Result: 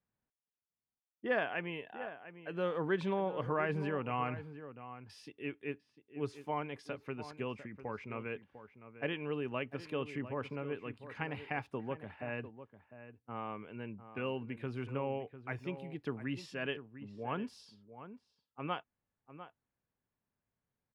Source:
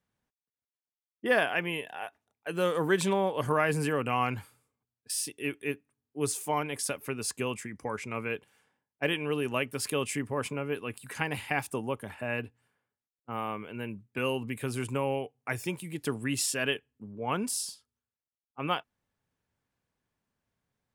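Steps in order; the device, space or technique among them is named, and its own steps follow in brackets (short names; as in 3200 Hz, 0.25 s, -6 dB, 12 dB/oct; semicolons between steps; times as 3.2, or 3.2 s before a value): shout across a valley (air absorption 280 m; outdoor echo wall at 120 m, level -12 dB); gain -6 dB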